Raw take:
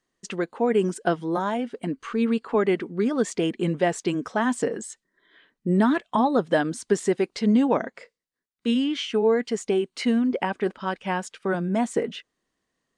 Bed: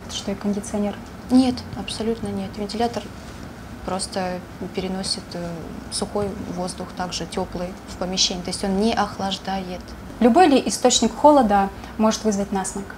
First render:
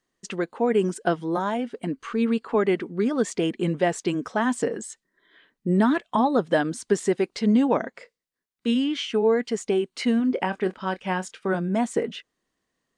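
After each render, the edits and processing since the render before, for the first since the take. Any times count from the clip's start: 10.17–11.59 s: doubling 27 ms -12.5 dB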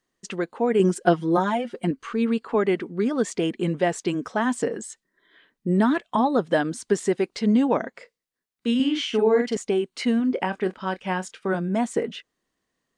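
0.79–1.91 s: comb 5.6 ms, depth 96%; 8.75–9.57 s: doubling 46 ms -3 dB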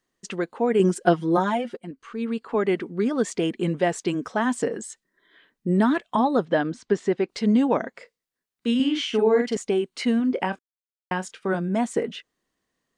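1.77–2.77 s: fade in, from -17 dB; 6.45–7.29 s: distance through air 140 m; 10.59–11.11 s: mute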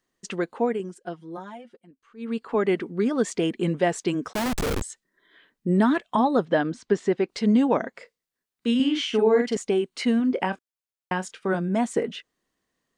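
0.63–2.35 s: dip -16 dB, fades 0.19 s; 4.33–4.82 s: Schmitt trigger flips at -29 dBFS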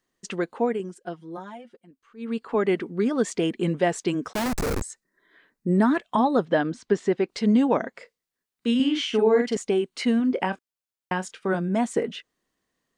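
4.47–5.97 s: peaking EQ 3.2 kHz -9 dB 0.46 oct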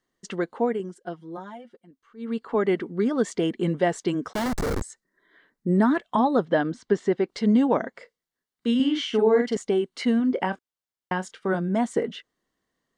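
treble shelf 6.2 kHz -6.5 dB; band-stop 2.5 kHz, Q 7.6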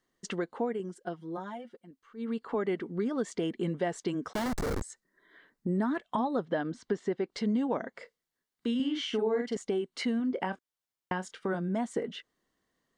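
compression 2:1, threshold -34 dBFS, peak gain reduction 10.5 dB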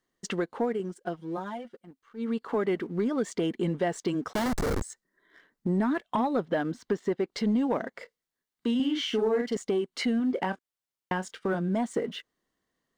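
waveshaping leveller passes 1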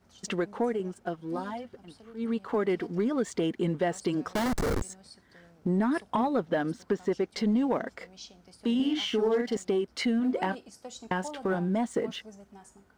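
add bed -27.5 dB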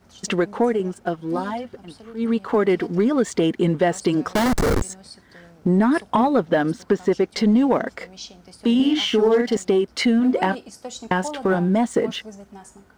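trim +9 dB

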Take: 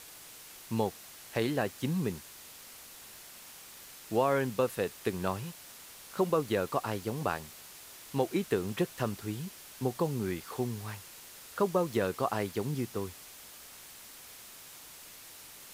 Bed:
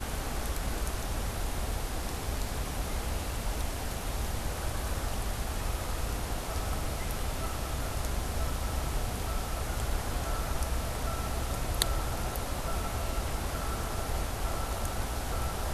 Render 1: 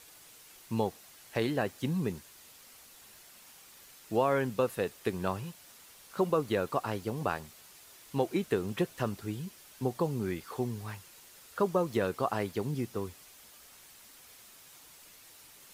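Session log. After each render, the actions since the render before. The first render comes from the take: noise reduction 6 dB, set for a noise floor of -51 dBFS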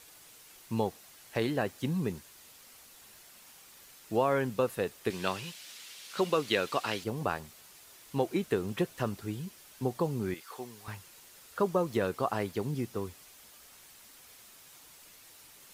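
5.10–7.04 s: frequency weighting D; 10.34–10.88 s: high-pass 940 Hz 6 dB/octave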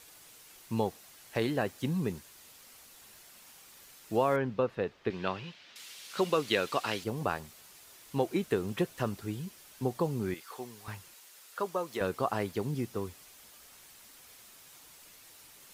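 4.36–5.76 s: distance through air 230 m; 11.14–12.01 s: high-pass 750 Hz 6 dB/octave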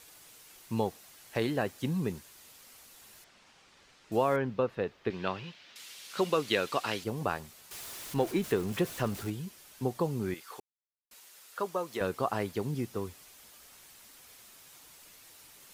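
3.24–4.12 s: distance through air 120 m; 7.71–9.30 s: jump at every zero crossing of -40 dBFS; 10.60–11.11 s: mute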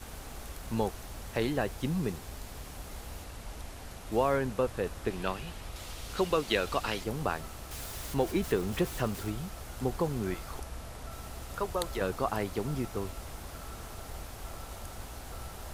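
add bed -10 dB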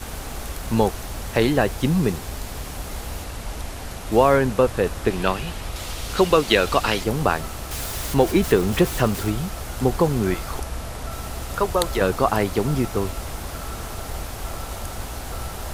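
trim +11.5 dB; peak limiter -1 dBFS, peak gain reduction 1 dB

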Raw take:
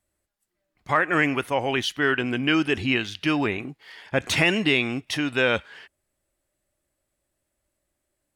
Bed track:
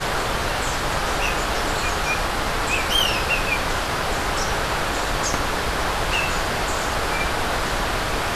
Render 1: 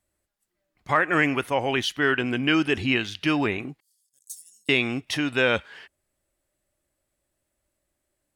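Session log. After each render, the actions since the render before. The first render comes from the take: 3.80–4.69 s: inverse Chebyshev high-pass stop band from 2.6 kHz, stop band 60 dB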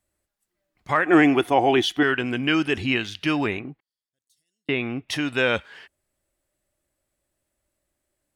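1.06–2.03 s: small resonant body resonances 340/730/3400 Hz, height 13 dB, ringing for 30 ms; 3.59–5.09 s: distance through air 400 m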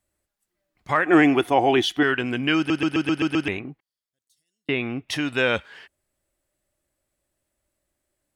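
2.57 s: stutter in place 0.13 s, 7 plays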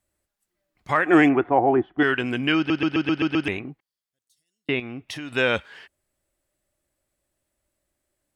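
1.28–1.98 s: low-pass 2.2 kHz -> 1.1 kHz 24 dB/octave; 2.52–3.44 s: low-pass 5.1 kHz 24 dB/octave; 4.79–5.36 s: compression 12:1, threshold -30 dBFS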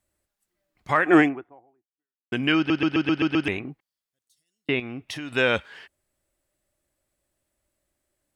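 1.20–2.32 s: fade out exponential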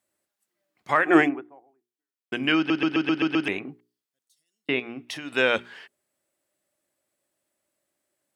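high-pass 190 Hz 12 dB/octave; hum notches 60/120/180/240/300/360/420 Hz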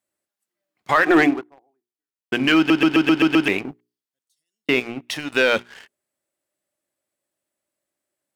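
waveshaping leveller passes 2; peak limiter -7.5 dBFS, peak gain reduction 4 dB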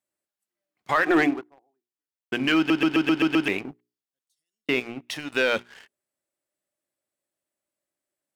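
trim -5 dB

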